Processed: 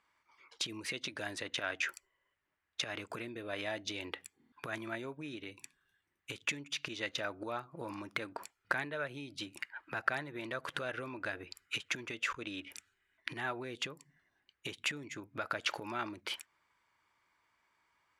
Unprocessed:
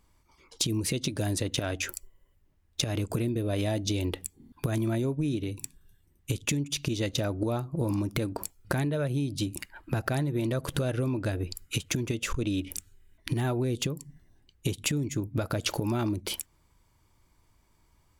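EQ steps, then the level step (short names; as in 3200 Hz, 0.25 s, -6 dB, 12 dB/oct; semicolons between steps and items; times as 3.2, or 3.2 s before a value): band-pass 1700 Hz, Q 1.4; +3.0 dB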